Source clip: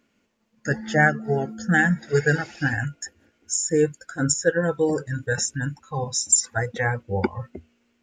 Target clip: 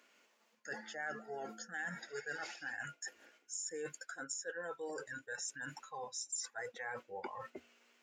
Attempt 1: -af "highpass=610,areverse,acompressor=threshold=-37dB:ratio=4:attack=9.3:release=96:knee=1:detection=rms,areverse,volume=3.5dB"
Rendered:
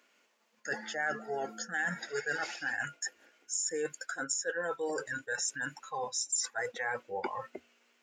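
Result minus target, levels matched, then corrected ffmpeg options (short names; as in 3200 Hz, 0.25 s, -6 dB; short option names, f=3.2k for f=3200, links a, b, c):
compressor: peak gain reduction -8.5 dB
-af "highpass=610,areverse,acompressor=threshold=-48.5dB:ratio=4:attack=9.3:release=96:knee=1:detection=rms,areverse,volume=3.5dB"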